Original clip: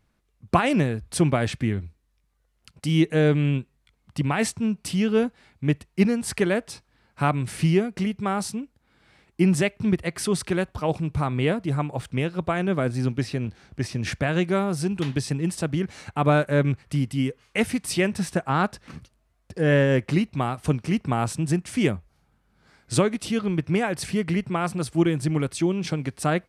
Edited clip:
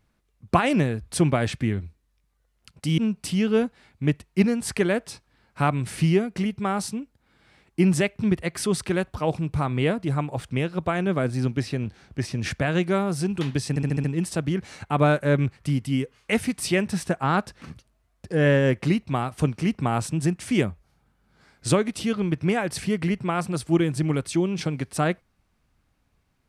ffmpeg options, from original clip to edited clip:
-filter_complex "[0:a]asplit=7[a][b][c][d][e][f][g];[a]atrim=end=2.982[h];[b]atrim=start=4.588:end=15.372[i];[c]atrim=start=15.298:end=15.372[j];[d]atrim=start=15.298:end=15.372[k];[e]atrim=start=15.298:end=15.372[l];[f]atrim=start=15.298:end=15.372[m];[g]atrim=start=15.298[n];[h][i]acrossfade=d=0.004:c1=hsin:c2=hsin[o];[o][j]acrossfade=d=0.004:c1=hsin:c2=hsin[p];[p][k]acrossfade=d=0.004:c1=hsin:c2=hsin[q];[q][l]acrossfade=d=0.004:c1=hsin:c2=hsin[r];[r][m]acrossfade=d=0.004:c1=hsin:c2=hsin[s];[s][n]acrossfade=d=0.004:c1=hsin:c2=hsin"

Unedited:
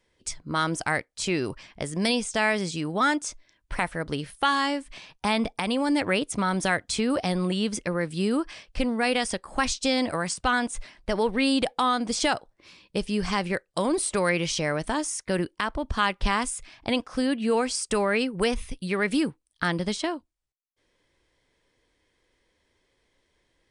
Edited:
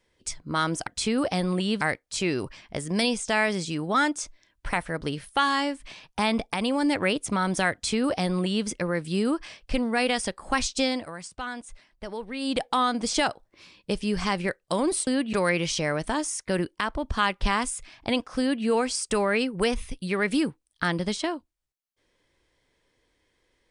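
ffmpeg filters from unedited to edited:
-filter_complex "[0:a]asplit=7[a][b][c][d][e][f][g];[a]atrim=end=0.872[h];[b]atrim=start=6.788:end=7.732[i];[c]atrim=start=0.868:end=10.12,asetpts=PTS-STARTPTS,afade=t=out:st=9.022:d=0.23:silence=0.298538[j];[d]atrim=start=10.12:end=11.45,asetpts=PTS-STARTPTS,volume=-10.5dB[k];[e]atrim=start=11.45:end=14.132,asetpts=PTS-STARTPTS,afade=t=in:d=0.23:silence=0.298538[l];[f]atrim=start=17.188:end=17.452[m];[g]atrim=start=14.128[n];[h][i]acrossfade=d=0.004:c1=hsin:c2=hsin[o];[j][k][l]concat=n=3:v=0:a=1[p];[o][p]acrossfade=d=0.004:c1=hsin:c2=hsin[q];[q][m]acrossfade=d=0.004:c1=hsin:c2=hsin[r];[r][n]acrossfade=d=0.004:c1=hsin:c2=hsin"

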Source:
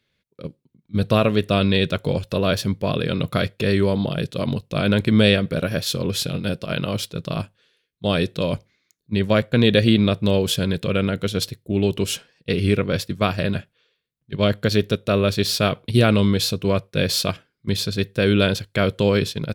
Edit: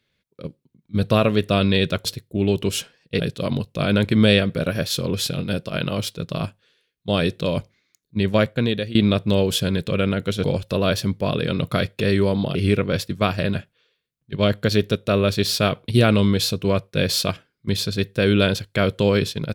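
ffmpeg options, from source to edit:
-filter_complex "[0:a]asplit=6[a][b][c][d][e][f];[a]atrim=end=2.052[g];[b]atrim=start=11.398:end=12.552[h];[c]atrim=start=4.158:end=9.91,asetpts=PTS-STARTPTS,afade=t=out:st=5.202:d=0.55:silence=0.1[i];[d]atrim=start=9.91:end=11.402,asetpts=PTS-STARTPTS,afade=t=in:d=0.004:c=hsin:silence=0.1[j];[e]atrim=start=2.048:end=4.162[k];[f]atrim=start=12.548[l];[g][h]acrossfade=d=0.004:c1=hsin:c2=hsin[m];[i][j]concat=n=2:v=0:a=1[n];[m][n]acrossfade=d=0.004:c1=hsin:c2=hsin[o];[o][k]acrossfade=d=0.004:c1=hsin:c2=hsin[p];[p][l]acrossfade=d=0.004:c1=hsin:c2=hsin"

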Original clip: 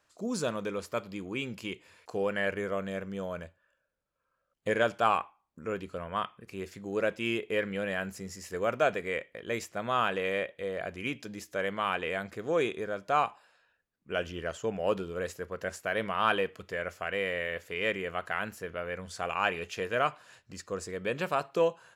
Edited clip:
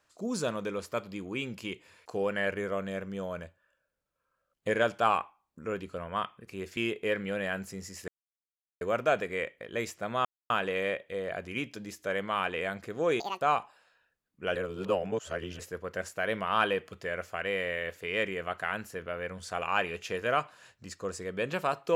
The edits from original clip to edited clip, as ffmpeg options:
-filter_complex "[0:a]asplit=8[a][b][c][d][e][f][g][h];[a]atrim=end=6.772[i];[b]atrim=start=7.238:end=8.55,asetpts=PTS-STARTPTS,afade=t=out:st=1.308:d=0.004:c=hsin,apad=pad_dur=0.73[j];[c]atrim=start=8.55:end=9.99,asetpts=PTS-STARTPTS,afade=t=in:d=0.004:c=hsin,afade=t=out:st=1.436:d=0.004:c=hsin,apad=pad_dur=0.25[k];[d]atrim=start=9.99:end=12.694,asetpts=PTS-STARTPTS,afade=t=in:d=0.004:c=hsin[l];[e]atrim=start=12.69:end=13.09,asetpts=PTS-STARTPTS,asetrate=82467,aresample=44100,atrim=end_sample=9433,asetpts=PTS-STARTPTS[m];[f]atrim=start=13.086:end=14.232[n];[g]atrim=start=14.228:end=15.272,asetpts=PTS-STARTPTS,areverse[o];[h]atrim=start=15.268[p];[j][k][l]concat=n=3:v=0:a=1[q];[i][q]acrossfade=d=0.004:c1=hsin:c2=hsin[r];[r][m]acrossfade=d=0.004:c1=hsin:c2=hsin[s];[s][n]acrossfade=d=0.004:c1=hsin:c2=hsin[t];[t][o]acrossfade=d=0.004:c1=hsin:c2=hsin[u];[u][p]acrossfade=d=0.004:c1=hsin:c2=hsin"

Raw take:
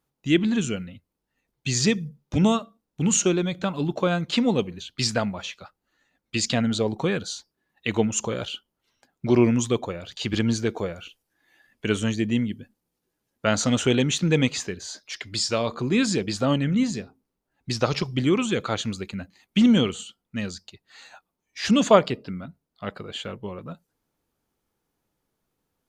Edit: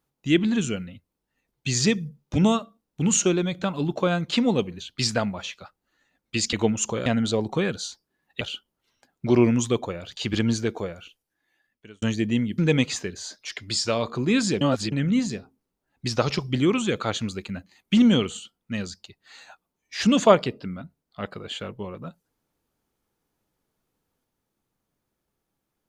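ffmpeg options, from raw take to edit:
-filter_complex "[0:a]asplit=8[a][b][c][d][e][f][g][h];[a]atrim=end=6.532[i];[b]atrim=start=7.878:end=8.412[j];[c]atrim=start=6.528:end=7.882[k];[d]atrim=start=8.408:end=12.02,asetpts=PTS-STARTPTS,afade=t=out:st=2.112:d=1.5[l];[e]atrim=start=12.02:end=12.582,asetpts=PTS-STARTPTS,afade=t=in:d=0.004:c=hsin[m];[f]atrim=start=14.218:end=16.252[n];[g]atrim=start=16.248:end=16.562,asetpts=PTS-STARTPTS,areverse[o];[h]atrim=start=16.558[p];[i][j]acrossfade=d=0.004:c1=hsin:c2=hsin[q];[q][k]acrossfade=d=0.004:c1=hsin:c2=hsin[r];[l][m]concat=n=2:v=0:a=1[s];[r][s]acrossfade=d=0.004:c1=hsin:c2=hsin[t];[t][n]acrossfade=d=0.004:c1=hsin:c2=hsin[u];[u][o]acrossfade=d=0.004:c1=hsin:c2=hsin[v];[v][p]acrossfade=d=0.004:c1=hsin:c2=hsin"

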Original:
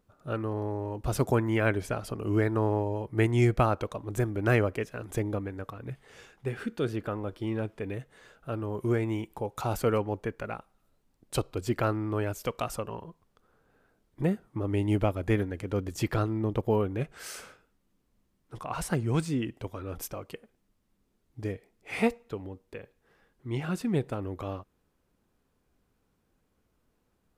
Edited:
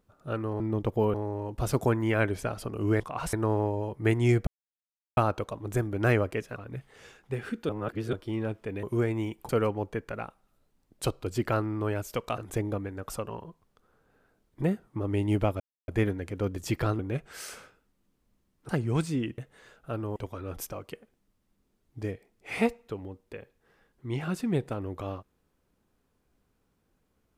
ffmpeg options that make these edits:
-filter_complex "[0:a]asplit=18[a][b][c][d][e][f][g][h][i][j][k][l][m][n][o][p][q][r];[a]atrim=end=0.602[s];[b]atrim=start=16.308:end=16.852[t];[c]atrim=start=0.598:end=2.462[u];[d]atrim=start=18.548:end=18.882[v];[e]atrim=start=2.458:end=3.6,asetpts=PTS-STARTPTS,afade=t=out:st=1.138:d=0.004:c=hsin,apad=pad_dur=0.7[w];[f]atrim=start=3.6:end=4.992,asetpts=PTS-STARTPTS,afade=t=in:d=0.004:c=hsin[x];[g]atrim=start=5.698:end=6.832[y];[h]atrim=start=6.828:end=7.272,asetpts=PTS-STARTPTS,areverse[z];[i]atrim=start=7.268:end=7.972[aa];[j]atrim=start=8.748:end=9.412[ab];[k]atrim=start=9.798:end=12.692[ac];[l]atrim=start=4.988:end=5.702[ad];[m]atrim=start=12.688:end=15.2,asetpts=PTS-STARTPTS,afade=t=out:st=2.508:d=0.004:c=hsin,apad=pad_dur=0.28[ae];[n]atrim=start=15.2:end=16.312,asetpts=PTS-STARTPTS,afade=t=in:d=0.004:c=hsin[af];[o]atrim=start=16.848:end=18.552[ag];[p]atrim=start=18.878:end=19.572[ah];[q]atrim=start=7.968:end=8.752[ai];[r]atrim=start=19.568[aj];[s][t]acrossfade=d=0.004:c1=hsin:c2=hsin[ak];[ak][u]acrossfade=d=0.004:c1=hsin:c2=hsin[al];[al][v]acrossfade=d=0.004:c1=hsin:c2=hsin[am];[w][x]concat=n=2:v=0:a=1[an];[am][an]acrossfade=d=0.004:c1=hsin:c2=hsin[ao];[ao][y]acrossfade=d=0.004:c1=hsin:c2=hsin[ap];[ap][z]acrossfade=d=0.004:c1=hsin:c2=hsin[aq];[aq][aa]acrossfade=d=0.004:c1=hsin:c2=hsin[ar];[ar][ab]acrossfade=d=0.004:c1=hsin:c2=hsin[as];[as][ac]acrossfade=d=0.004:c1=hsin:c2=hsin[at];[at][ad]acrossfade=d=0.004:c1=hsin:c2=hsin[au];[ae][af]concat=n=2:v=0:a=1[av];[au][av]acrossfade=d=0.004:c1=hsin:c2=hsin[aw];[aw][ag]acrossfade=d=0.004:c1=hsin:c2=hsin[ax];[ax][ah]acrossfade=d=0.004:c1=hsin:c2=hsin[ay];[ay][ai]acrossfade=d=0.004:c1=hsin:c2=hsin[az];[az][aj]acrossfade=d=0.004:c1=hsin:c2=hsin"

